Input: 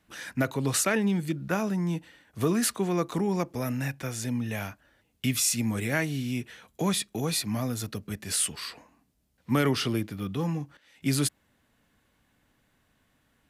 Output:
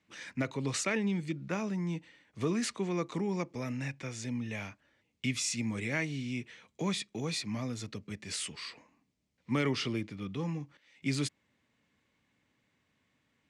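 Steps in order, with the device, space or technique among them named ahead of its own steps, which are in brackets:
car door speaker (loudspeaker in its box 92–7,600 Hz, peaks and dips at 720 Hz −5 dB, 1,500 Hz −5 dB, 2,200 Hz +6 dB)
level −5.5 dB

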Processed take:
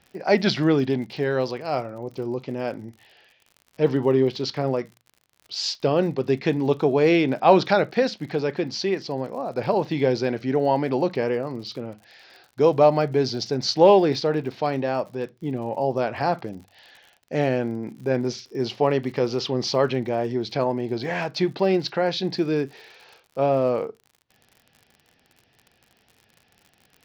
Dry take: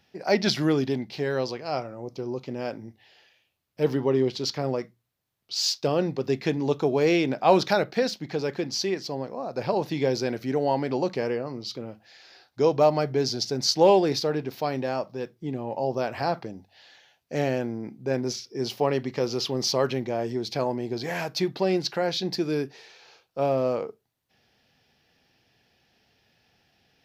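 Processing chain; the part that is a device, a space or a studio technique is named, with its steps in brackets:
lo-fi chain (low-pass filter 4,000 Hz 12 dB per octave; tape wow and flutter 28 cents; surface crackle 55 per second −42 dBFS)
level +3.5 dB

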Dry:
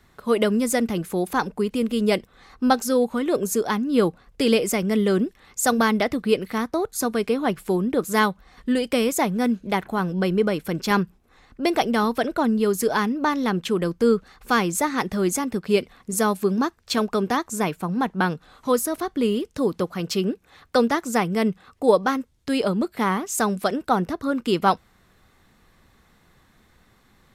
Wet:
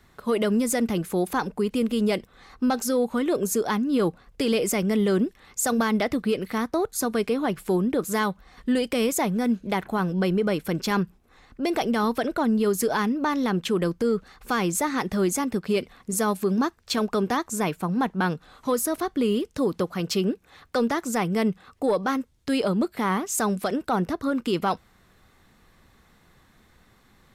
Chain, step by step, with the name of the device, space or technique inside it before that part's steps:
soft clipper into limiter (soft clipping −7.5 dBFS, distortion −26 dB; brickwall limiter −15.5 dBFS, peak gain reduction 7 dB)

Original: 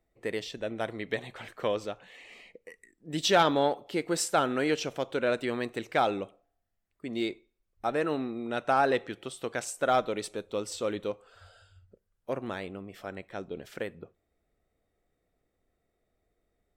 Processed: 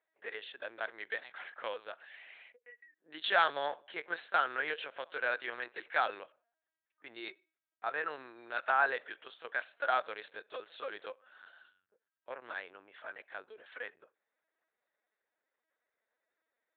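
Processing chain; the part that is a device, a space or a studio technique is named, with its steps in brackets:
talking toy (linear-prediction vocoder at 8 kHz pitch kept; high-pass filter 700 Hz 12 dB per octave; parametric band 1,600 Hz +10 dB 0.46 octaves)
level −5 dB

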